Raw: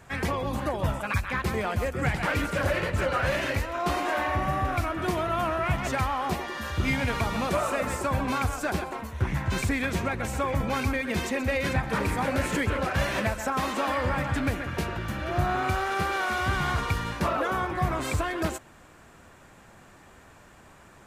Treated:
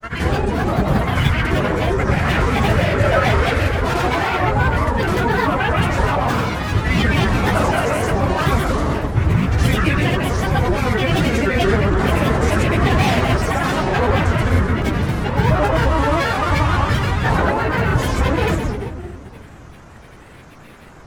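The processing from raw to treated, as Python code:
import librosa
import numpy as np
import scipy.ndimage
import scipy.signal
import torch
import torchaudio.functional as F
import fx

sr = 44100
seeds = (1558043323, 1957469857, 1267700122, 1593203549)

y = fx.room_shoebox(x, sr, seeds[0], volume_m3=2100.0, walls='mixed', distance_m=4.0)
y = fx.granulator(y, sr, seeds[1], grain_ms=100.0, per_s=23.0, spray_ms=100.0, spread_st=7)
y = y * 10.0 ** (4.0 / 20.0)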